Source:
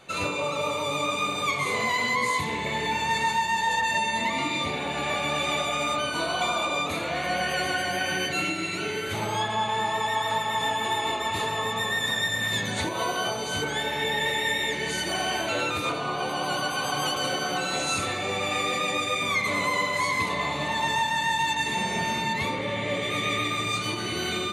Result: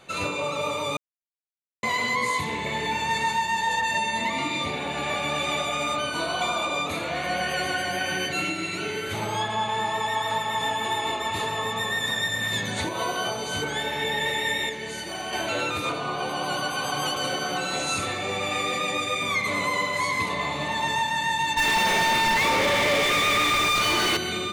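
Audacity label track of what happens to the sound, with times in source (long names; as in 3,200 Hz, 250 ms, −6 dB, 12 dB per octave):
0.970000	1.830000	silence
14.690000	15.330000	tuned comb filter 110 Hz, decay 0.27 s
21.570000	24.170000	mid-hump overdrive drive 35 dB, tone 3,600 Hz, clips at −15 dBFS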